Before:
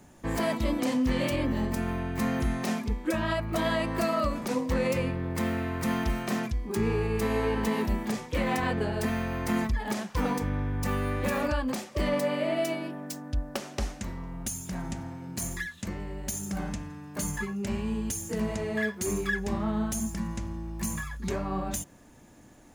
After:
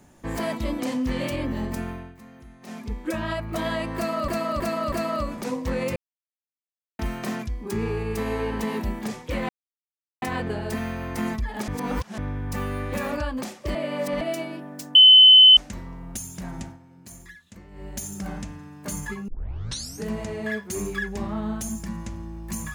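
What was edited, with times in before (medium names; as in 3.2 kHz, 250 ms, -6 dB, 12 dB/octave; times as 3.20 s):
1.80–2.98 s: dip -19 dB, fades 0.37 s
3.96–4.28 s: loop, 4 plays
5.00–6.03 s: mute
8.53 s: insert silence 0.73 s
9.99–10.49 s: reverse
12.06–12.52 s: reverse
13.26–13.88 s: bleep 3.04 kHz -7.5 dBFS
14.95–16.16 s: dip -11 dB, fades 0.14 s
17.59 s: tape start 0.78 s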